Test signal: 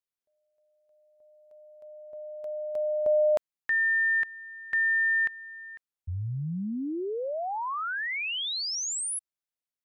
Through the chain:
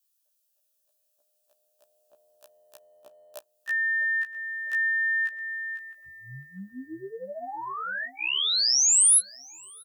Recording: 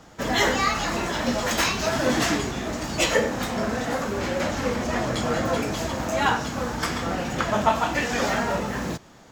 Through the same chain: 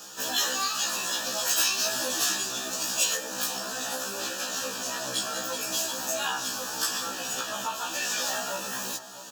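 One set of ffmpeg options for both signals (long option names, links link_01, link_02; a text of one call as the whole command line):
ffmpeg -i in.wav -filter_complex "[0:a]highpass=190,lowshelf=frequency=370:gain=-4,acompressor=threshold=-38dB:ratio=2:attack=1.4:release=232:knee=6:detection=rms,crystalizer=i=8.5:c=0,asuperstop=centerf=2100:order=8:qfactor=3.9,asplit=2[link_01][link_02];[link_02]adelay=655,lowpass=frequency=1600:poles=1,volume=-14dB,asplit=2[link_03][link_04];[link_04]adelay=655,lowpass=frequency=1600:poles=1,volume=0.51,asplit=2[link_05][link_06];[link_06]adelay=655,lowpass=frequency=1600:poles=1,volume=0.51,asplit=2[link_07][link_08];[link_08]adelay=655,lowpass=frequency=1600:poles=1,volume=0.51,asplit=2[link_09][link_10];[link_10]adelay=655,lowpass=frequency=1600:poles=1,volume=0.51[link_11];[link_03][link_05][link_07][link_09][link_11]amix=inputs=5:normalize=0[link_12];[link_01][link_12]amix=inputs=2:normalize=0,afftfilt=real='re*1.73*eq(mod(b,3),0)':imag='im*1.73*eq(mod(b,3),0)':win_size=2048:overlap=0.75" out.wav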